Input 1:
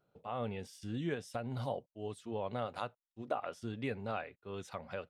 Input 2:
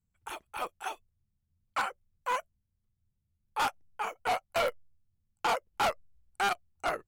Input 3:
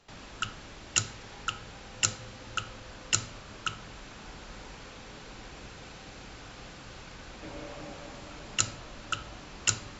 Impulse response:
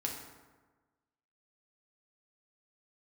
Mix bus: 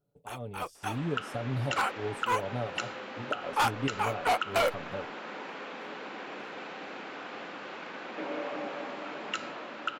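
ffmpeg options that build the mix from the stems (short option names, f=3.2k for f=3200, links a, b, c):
-filter_complex "[0:a]equalizer=f=1.9k:t=o:w=2.5:g=-13,aecho=1:1:7:0.5,volume=-1dB,asplit=2[a][b];[1:a]volume=-2.5dB[c];[2:a]highpass=f=180:w=0.5412,highpass=f=180:w=1.3066,acrossover=split=240 3100:gain=0.224 1 0.0794[d][e][f];[d][e][f]amix=inputs=3:normalize=0,adelay=750,volume=1.5dB[g];[b]apad=whole_len=311935[h];[c][h]sidechaingate=range=-40dB:threshold=-58dB:ratio=16:detection=peak[i];[a][i][g]amix=inputs=3:normalize=0,dynaudnorm=f=150:g=13:m=7dB,alimiter=limit=-19dB:level=0:latency=1:release=125"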